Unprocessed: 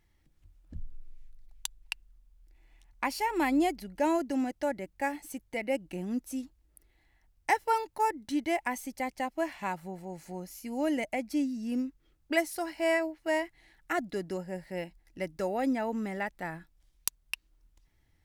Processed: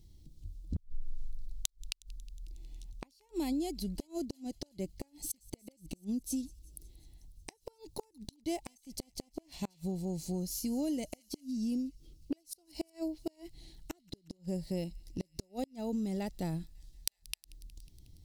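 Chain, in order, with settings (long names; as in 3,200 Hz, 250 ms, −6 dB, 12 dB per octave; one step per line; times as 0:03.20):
drawn EQ curve 170 Hz 0 dB, 390 Hz −6 dB, 1,700 Hz −30 dB, 4,100 Hz −2 dB, 12,000 Hz −6 dB
downward compressor 10 to 1, threshold −41 dBFS, peak gain reduction 14.5 dB
dynamic equaliser 240 Hz, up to −4 dB, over −55 dBFS, Q 0.77
gate with flip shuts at −38 dBFS, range −35 dB
delay with a high-pass on its return 182 ms, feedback 71%, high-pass 2,300 Hz, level −22.5 dB
level +13.5 dB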